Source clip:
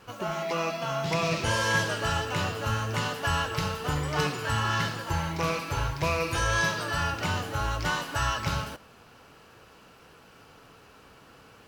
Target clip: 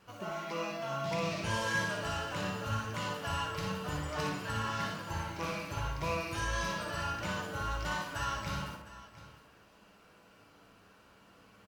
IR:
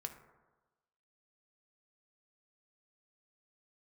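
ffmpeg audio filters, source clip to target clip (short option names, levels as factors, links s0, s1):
-filter_complex "[0:a]aecho=1:1:58|706:0.562|0.158[s0];[1:a]atrim=start_sample=2205,asetrate=61740,aresample=44100[s1];[s0][s1]afir=irnorm=-1:irlink=0,volume=0.708"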